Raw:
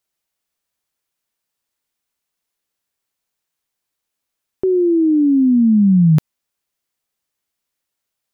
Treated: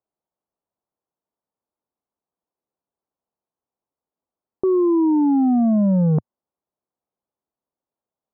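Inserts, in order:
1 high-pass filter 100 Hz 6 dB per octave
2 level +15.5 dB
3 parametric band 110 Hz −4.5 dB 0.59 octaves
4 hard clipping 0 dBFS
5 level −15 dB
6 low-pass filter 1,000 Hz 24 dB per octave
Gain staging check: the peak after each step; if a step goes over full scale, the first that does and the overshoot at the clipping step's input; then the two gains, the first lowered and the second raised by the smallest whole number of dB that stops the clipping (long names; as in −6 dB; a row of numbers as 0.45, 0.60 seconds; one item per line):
−8.5, +7.0, +6.0, 0.0, −15.0, −13.5 dBFS
step 2, 6.0 dB
step 2 +9.5 dB, step 5 −9 dB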